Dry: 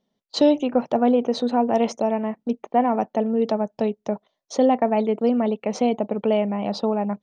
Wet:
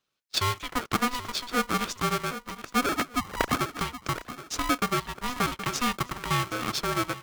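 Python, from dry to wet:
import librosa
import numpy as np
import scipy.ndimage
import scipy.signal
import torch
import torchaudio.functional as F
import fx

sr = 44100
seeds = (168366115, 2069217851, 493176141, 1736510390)

y = fx.sine_speech(x, sr, at=(2.86, 3.61))
y = scipy.signal.sosfilt(scipy.signal.butter(4, 790.0, 'highpass', fs=sr, output='sos'), y)
y = fx.echo_feedback(y, sr, ms=772, feedback_pct=36, wet_db=-16.5)
y = fx.rider(y, sr, range_db=4, speed_s=0.5)
y = y * np.sign(np.sin(2.0 * np.pi * 490.0 * np.arange(len(y)) / sr))
y = y * librosa.db_to_amplitude(2.5)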